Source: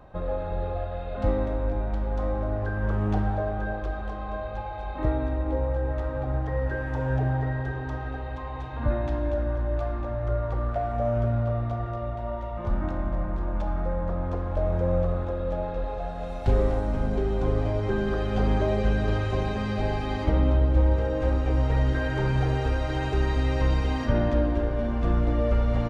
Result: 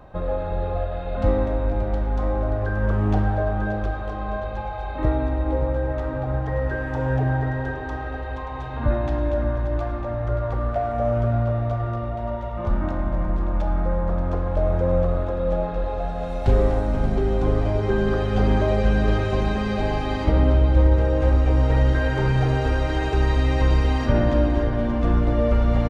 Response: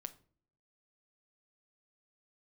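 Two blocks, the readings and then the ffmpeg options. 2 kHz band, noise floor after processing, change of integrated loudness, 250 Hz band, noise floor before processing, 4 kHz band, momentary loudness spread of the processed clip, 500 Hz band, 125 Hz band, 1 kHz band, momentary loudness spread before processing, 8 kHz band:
+4.5 dB, -30 dBFS, +4.5 dB, +4.5 dB, -33 dBFS, +4.5 dB, 9 LU, +4.5 dB, +4.0 dB, +4.5 dB, 8 LU, no reading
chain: -af "aecho=1:1:579:0.282,volume=1.58"

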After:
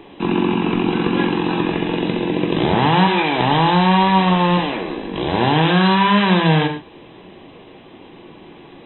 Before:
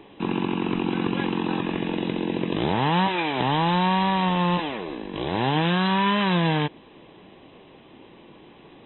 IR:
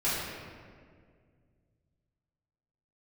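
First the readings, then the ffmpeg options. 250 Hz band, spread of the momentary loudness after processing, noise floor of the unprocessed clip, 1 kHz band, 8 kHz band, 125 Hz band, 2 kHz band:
+7.0 dB, 8 LU, -50 dBFS, +7.0 dB, no reading, +7.0 dB, +7.0 dB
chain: -filter_complex "[0:a]asplit=2[s0][s1];[1:a]atrim=start_sample=2205,afade=t=out:st=0.19:d=0.01,atrim=end_sample=8820[s2];[s1][s2]afir=irnorm=-1:irlink=0,volume=0.282[s3];[s0][s3]amix=inputs=2:normalize=0,volume=1.58"

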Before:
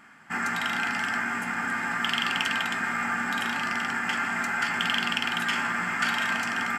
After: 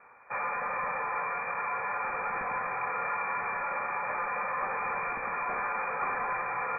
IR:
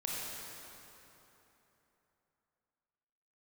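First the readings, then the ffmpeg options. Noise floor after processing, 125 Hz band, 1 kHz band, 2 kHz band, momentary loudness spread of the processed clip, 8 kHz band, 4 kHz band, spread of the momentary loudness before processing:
-36 dBFS, -10.5 dB, -0.5 dB, -8.5 dB, 1 LU, under -40 dB, under -40 dB, 3 LU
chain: -filter_complex "[0:a]acrossover=split=330|910[s0][s1][s2];[s2]asoftclip=type=tanh:threshold=0.0668[s3];[s0][s1][s3]amix=inputs=3:normalize=0,lowpass=f=2200:t=q:w=0.5098,lowpass=f=2200:t=q:w=0.6013,lowpass=f=2200:t=q:w=0.9,lowpass=f=2200:t=q:w=2.563,afreqshift=-2600,volume=0.75"

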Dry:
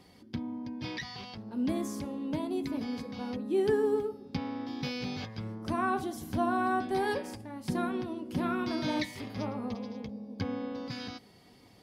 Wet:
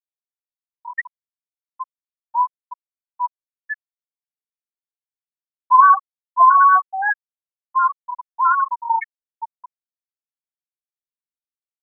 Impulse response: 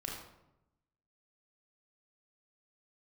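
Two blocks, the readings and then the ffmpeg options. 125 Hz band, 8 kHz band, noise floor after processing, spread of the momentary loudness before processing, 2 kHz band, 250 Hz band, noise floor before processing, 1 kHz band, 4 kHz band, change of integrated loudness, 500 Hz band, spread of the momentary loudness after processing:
under -40 dB, under -30 dB, under -85 dBFS, 10 LU, +14.5 dB, under -40 dB, -58 dBFS, +20.0 dB, under -40 dB, +17.0 dB, under -15 dB, 25 LU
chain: -filter_complex "[0:a]highpass=f=1000:t=q:w=7.8,equalizer=f=1900:w=0.87:g=10.5,asplit=2[s0][s1];[s1]alimiter=limit=0.0841:level=0:latency=1:release=410,volume=0.944[s2];[s0][s2]amix=inputs=2:normalize=0,afftfilt=real='re*gte(hypot(re,im),0.708)':imag='im*gte(hypot(re,im),0.708)':win_size=1024:overlap=0.75,volume=1.5"

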